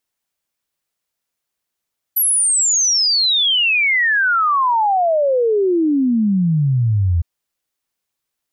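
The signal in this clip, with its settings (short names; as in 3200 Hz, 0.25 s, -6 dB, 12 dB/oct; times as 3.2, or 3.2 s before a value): log sweep 12000 Hz -> 81 Hz 5.06 s -12.5 dBFS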